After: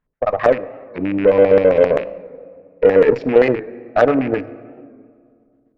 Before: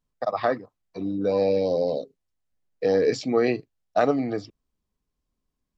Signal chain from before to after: rattling part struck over -42 dBFS, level -28 dBFS; in parallel at 0 dB: limiter -17 dBFS, peak gain reduction 8 dB; on the sum: LFO low-pass square 7.6 Hz 540–1800 Hz; on a send at -13.5 dB: reverb RT60 2.2 s, pre-delay 4 ms; on the sum: added harmonics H 7 -29 dB, 8 -31 dB, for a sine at -0.5 dBFS; record warp 45 rpm, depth 100 cents; gain +1 dB

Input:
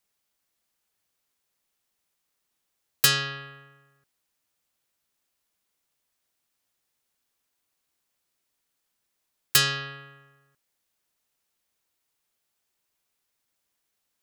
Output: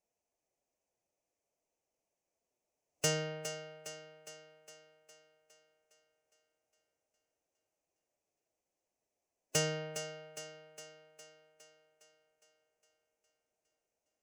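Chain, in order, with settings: formant-preserving pitch shift +2 st; EQ curve 220 Hz 0 dB, 320 Hz +4 dB, 650 Hz +10 dB, 1400 Hz -13 dB, 2500 Hz -4 dB, 3800 Hz -20 dB, 6100 Hz -1 dB, 15000 Hz -21 dB; on a send: thinning echo 0.41 s, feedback 58%, high-pass 160 Hz, level -10 dB; on the sum: gain -4.5 dB

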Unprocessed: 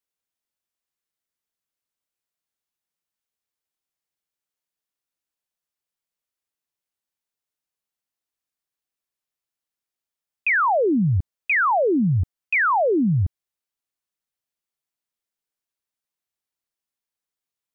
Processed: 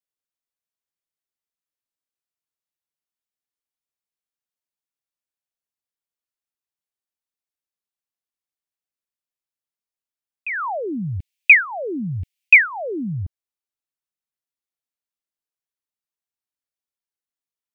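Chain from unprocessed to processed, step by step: 10.79–13.13 resonant high shelf 1700 Hz +13 dB, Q 3; gain -6.5 dB

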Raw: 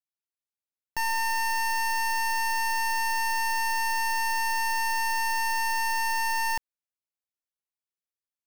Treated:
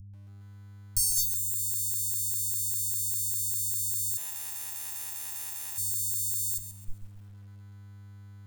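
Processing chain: reverb RT60 0.40 s, pre-delay 65 ms, DRR 7.5 dB; fuzz box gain 50 dB, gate -50 dBFS; ripple EQ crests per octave 1, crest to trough 9 dB; reverb removal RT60 1.3 s; buzz 100 Hz, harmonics 10, -38 dBFS 0 dB/oct; inverse Chebyshev band-stop 460–1900 Hz, stop band 70 dB; 4.17–5.78 power-law curve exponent 3; lo-fi delay 0.134 s, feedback 35%, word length 9-bit, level -11 dB; gain +1.5 dB

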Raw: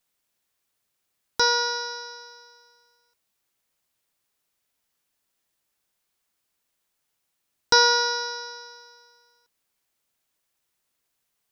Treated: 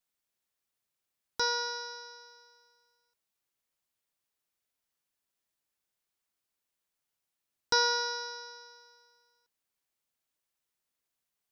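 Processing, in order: 1.94–2.37 HPF 120 Hz; gain -9 dB

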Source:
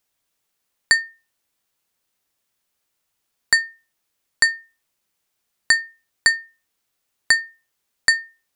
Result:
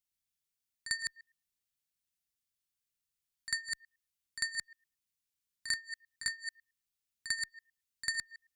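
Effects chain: reverse delay 0.11 s, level -4 dB; passive tone stack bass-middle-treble 6-0-2; pre-echo 47 ms -12.5 dB

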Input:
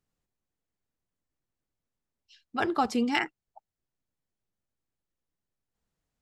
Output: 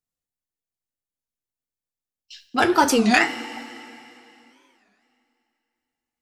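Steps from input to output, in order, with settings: gate with hold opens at -51 dBFS; high shelf 4300 Hz +11.5 dB; notches 60/120/180/240 Hz; two-slope reverb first 0.26 s, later 2.9 s, from -17 dB, DRR 5 dB; in parallel at -3.5 dB: soft clip -24.5 dBFS, distortion -9 dB; on the sum: record warp 33 1/3 rpm, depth 250 cents; gain +5 dB

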